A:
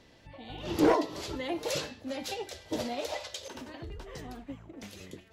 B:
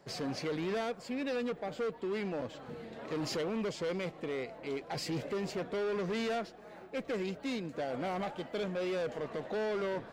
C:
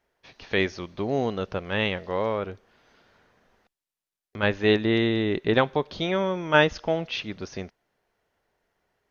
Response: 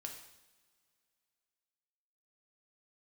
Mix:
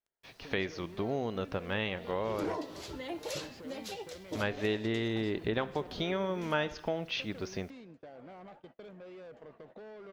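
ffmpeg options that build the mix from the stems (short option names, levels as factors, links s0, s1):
-filter_complex "[0:a]adelay=1600,volume=0.531[s0];[1:a]lowpass=f=2600:p=1,agate=range=0.02:threshold=0.00891:ratio=16:detection=peak,acompressor=threshold=0.00891:ratio=6,adelay=250,volume=0.473[s1];[2:a]volume=0.668,asplit=2[s2][s3];[s3]volume=0.168[s4];[s0][s2]amix=inputs=2:normalize=0,acrusher=bits=10:mix=0:aa=0.000001,acompressor=threshold=0.0282:ratio=6,volume=1[s5];[3:a]atrim=start_sample=2205[s6];[s4][s6]afir=irnorm=-1:irlink=0[s7];[s1][s5][s7]amix=inputs=3:normalize=0"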